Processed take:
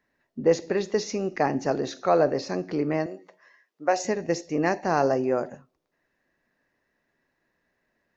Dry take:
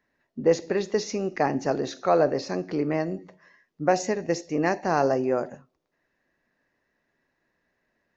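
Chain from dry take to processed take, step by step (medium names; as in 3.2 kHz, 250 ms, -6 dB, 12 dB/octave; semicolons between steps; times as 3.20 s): 3.06–4.05 s: high-pass 450 Hz 12 dB/octave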